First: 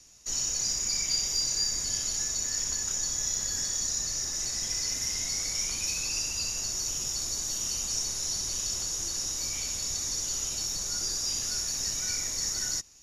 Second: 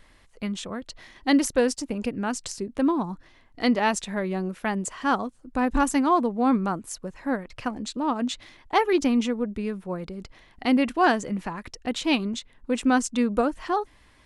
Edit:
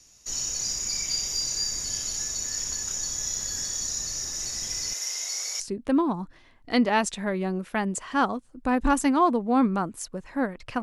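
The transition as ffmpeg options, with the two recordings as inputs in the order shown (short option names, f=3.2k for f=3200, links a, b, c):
-filter_complex "[0:a]asettb=1/sr,asplit=3[a][b][c];[a]atrim=end=4.934[d];[b]atrim=start=4.93:end=5.6,asetpts=PTS-STARTPTS,afade=t=in:d=0.004:c=qsin,afade=t=out:st=0.666:d=0.004:c=qsin,highpass=f=460:w=0.5412,highpass=f=460:w=1.3066[e];[c]atrim=start=5.596[f];[d][e]acrossfade=d=0.004:c1=hsin:c2=qsin[g];[g][f]acrossfade=d=0.004:c1=qsin:c2=hsin,apad=whole_dur=10.82,atrim=end=10.82,atrim=end=5.602[h];[1:a]atrim=start=2.498:end=7.72[i];[h][i]acrossfade=d=0.004:c1=hsin:c2=hsin"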